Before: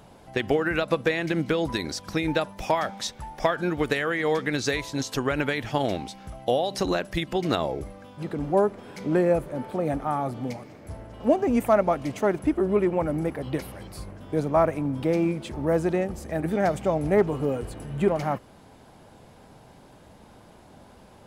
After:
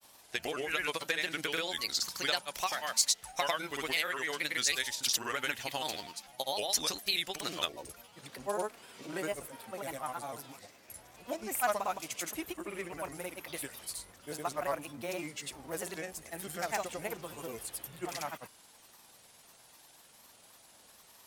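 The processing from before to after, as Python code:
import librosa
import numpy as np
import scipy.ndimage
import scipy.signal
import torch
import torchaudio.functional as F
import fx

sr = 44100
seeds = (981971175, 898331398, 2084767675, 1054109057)

y = fx.granulator(x, sr, seeds[0], grain_ms=100.0, per_s=20.0, spray_ms=100.0, spread_st=3)
y = F.preemphasis(torch.from_numpy(y), 0.97).numpy()
y = y * librosa.db_to_amplitude(8.5)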